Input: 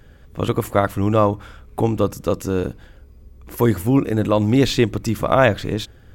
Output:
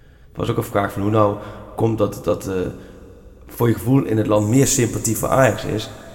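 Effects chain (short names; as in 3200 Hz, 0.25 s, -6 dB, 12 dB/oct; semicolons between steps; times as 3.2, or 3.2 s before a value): 4.36–5.56 resonant high shelf 5500 Hz +11 dB, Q 3; two-slope reverb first 0.24 s, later 3.1 s, from -18 dB, DRR 6 dB; gain -1 dB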